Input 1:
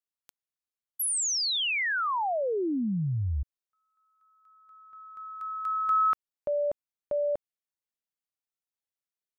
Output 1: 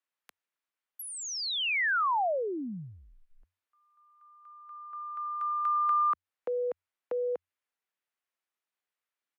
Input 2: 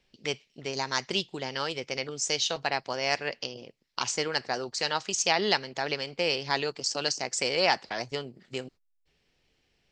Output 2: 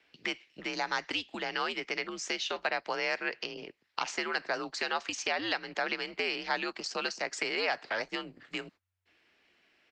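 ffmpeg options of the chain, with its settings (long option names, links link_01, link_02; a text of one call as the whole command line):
ffmpeg -i in.wav -filter_complex "[0:a]afreqshift=-92,tiltshelf=frequency=850:gain=-5.5,acrossover=split=540|5000[link_01][link_02][link_03];[link_01]acompressor=threshold=-40dB:ratio=4[link_04];[link_02]acompressor=threshold=-27dB:ratio=4[link_05];[link_03]acompressor=threshold=-34dB:ratio=4[link_06];[link_04][link_05][link_06]amix=inputs=3:normalize=0,acrossover=split=170 2600:gain=0.0794 1 0.178[link_07][link_08][link_09];[link_07][link_08][link_09]amix=inputs=3:normalize=0,asplit=2[link_10][link_11];[link_11]acompressor=threshold=-42dB:ratio=6:attack=1.4:release=133:detection=rms,volume=1dB[link_12];[link_10][link_12]amix=inputs=2:normalize=0,aresample=32000,aresample=44100" out.wav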